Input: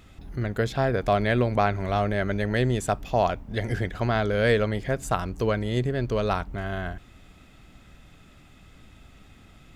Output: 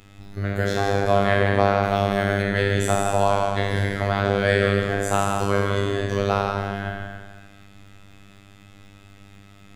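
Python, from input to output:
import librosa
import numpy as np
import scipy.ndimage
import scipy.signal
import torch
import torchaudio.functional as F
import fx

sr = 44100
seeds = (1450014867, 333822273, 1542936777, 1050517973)

y = fx.spec_trails(x, sr, decay_s=1.58)
y = y + 10.0 ** (-7.0 / 20.0) * np.pad(y, (int(160 * sr / 1000.0), 0))[:len(y)]
y = fx.robotise(y, sr, hz=99.6)
y = fx.high_shelf(y, sr, hz=fx.line((1.82, 9200.0), (2.41, 5900.0)), db=10.0, at=(1.82, 2.41), fade=0.02)
y = F.gain(torch.from_numpy(y), 2.0).numpy()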